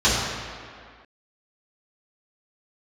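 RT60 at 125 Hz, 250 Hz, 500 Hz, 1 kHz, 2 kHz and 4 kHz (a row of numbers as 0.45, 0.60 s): 1.6, 1.9, 1.9, 2.2, 2.1, 1.5 s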